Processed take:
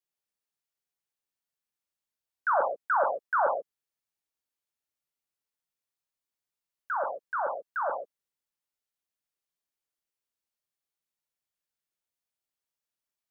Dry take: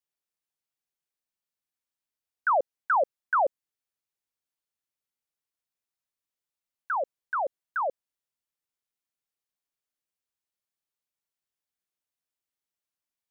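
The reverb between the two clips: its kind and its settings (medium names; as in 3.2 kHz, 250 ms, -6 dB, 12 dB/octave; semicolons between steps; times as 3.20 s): gated-style reverb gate 160 ms flat, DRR 2 dB; trim -3 dB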